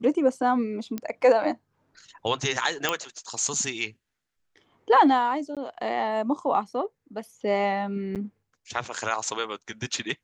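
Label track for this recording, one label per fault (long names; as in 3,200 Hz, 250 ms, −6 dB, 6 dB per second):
0.980000	0.980000	click −17 dBFS
2.890000	2.890000	click −7 dBFS
5.550000	5.570000	drop-out 17 ms
8.150000	8.160000	drop-out 8 ms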